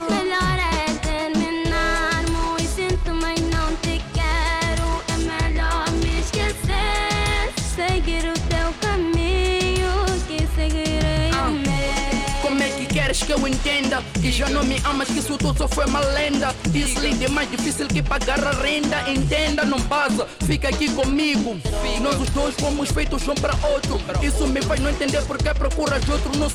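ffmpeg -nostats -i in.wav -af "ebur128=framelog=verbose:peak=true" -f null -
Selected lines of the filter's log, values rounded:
Integrated loudness:
  I:         -21.4 LUFS
  Threshold: -31.4 LUFS
Loudness range:
  LRA:         1.5 LU
  Threshold: -41.4 LUFS
  LRA low:   -22.1 LUFS
  LRA high:  -20.7 LUFS
True peak:
  Peak:      -13.0 dBFS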